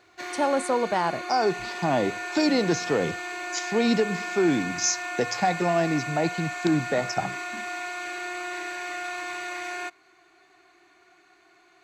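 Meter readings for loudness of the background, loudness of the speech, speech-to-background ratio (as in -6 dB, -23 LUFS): -32.5 LUFS, -26.0 LUFS, 6.5 dB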